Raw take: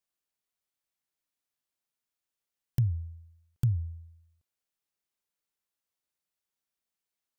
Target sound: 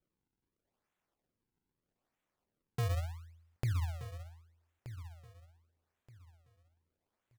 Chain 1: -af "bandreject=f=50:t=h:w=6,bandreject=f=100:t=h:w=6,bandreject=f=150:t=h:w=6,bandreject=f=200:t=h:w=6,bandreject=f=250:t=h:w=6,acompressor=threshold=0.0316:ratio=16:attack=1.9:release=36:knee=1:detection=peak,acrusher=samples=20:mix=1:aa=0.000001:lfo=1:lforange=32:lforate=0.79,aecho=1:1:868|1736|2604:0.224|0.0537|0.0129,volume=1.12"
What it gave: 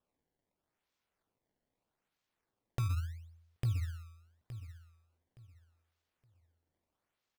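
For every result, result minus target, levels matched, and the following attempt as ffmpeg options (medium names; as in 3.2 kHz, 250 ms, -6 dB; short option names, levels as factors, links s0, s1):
echo 358 ms early; decimation with a swept rate: distortion -7 dB
-af "bandreject=f=50:t=h:w=6,bandreject=f=100:t=h:w=6,bandreject=f=150:t=h:w=6,bandreject=f=200:t=h:w=6,bandreject=f=250:t=h:w=6,acompressor=threshold=0.0316:ratio=16:attack=1.9:release=36:knee=1:detection=peak,acrusher=samples=20:mix=1:aa=0.000001:lfo=1:lforange=32:lforate=0.79,aecho=1:1:1226|2452|3678:0.224|0.0537|0.0129,volume=1.12"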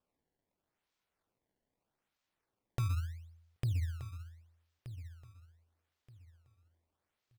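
decimation with a swept rate: distortion -7 dB
-af "bandreject=f=50:t=h:w=6,bandreject=f=100:t=h:w=6,bandreject=f=150:t=h:w=6,bandreject=f=200:t=h:w=6,bandreject=f=250:t=h:w=6,acompressor=threshold=0.0316:ratio=16:attack=1.9:release=36:knee=1:detection=peak,acrusher=samples=42:mix=1:aa=0.000001:lfo=1:lforange=67.2:lforate=0.79,aecho=1:1:1226|2452|3678:0.224|0.0537|0.0129,volume=1.12"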